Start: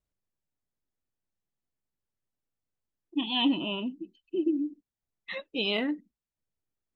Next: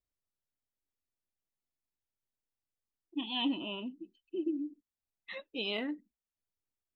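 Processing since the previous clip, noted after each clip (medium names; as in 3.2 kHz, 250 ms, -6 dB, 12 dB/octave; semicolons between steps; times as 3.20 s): peaking EQ 160 Hz -9.5 dB 0.33 oct; trim -6.5 dB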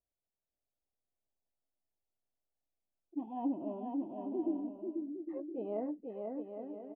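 four-pole ladder low-pass 810 Hz, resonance 50%; on a send: bouncing-ball echo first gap 490 ms, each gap 0.65×, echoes 5; on the sum: trim +6.5 dB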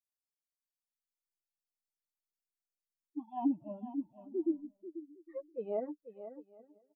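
expander on every frequency bin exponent 3; trim +6 dB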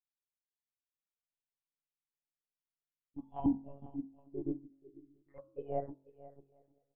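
monotone LPC vocoder at 8 kHz 140 Hz; de-hum 45.35 Hz, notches 33; upward expansion 1.5:1, over -50 dBFS; trim +2.5 dB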